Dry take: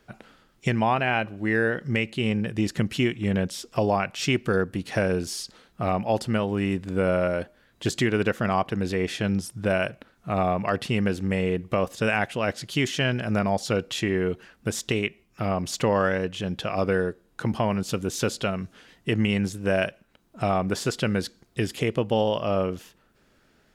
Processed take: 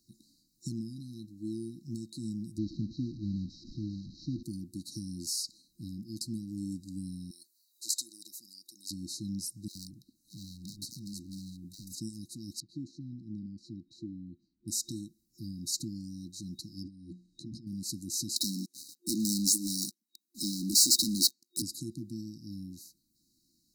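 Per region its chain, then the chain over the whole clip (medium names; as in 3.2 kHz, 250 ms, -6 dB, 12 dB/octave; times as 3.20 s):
2.58–4.43 s: one-bit delta coder 32 kbps, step -27 dBFS + low-pass 1.9 kHz + bass shelf 79 Hz +12 dB
7.31–8.91 s: high-pass 1 kHz + treble shelf 8.3 kHz +9 dB
9.68–12.01 s: overload inside the chain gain 28.5 dB + bands offset in time highs, lows 70 ms, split 560 Hz
12.60–14.68 s: low-pass 1.5 kHz + bass shelf 420 Hz -4.5 dB
16.83–17.67 s: hum notches 60/120/180/240 Hz + compressor with a negative ratio -30 dBFS + distance through air 100 m
18.36–21.62 s: steep high-pass 220 Hz + peaking EQ 700 Hz -11.5 dB 2.3 oct + waveshaping leveller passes 5
whole clip: tilt EQ +2 dB/octave; FFT band-reject 350–3800 Hz; bass shelf 160 Hz -3 dB; trim -5.5 dB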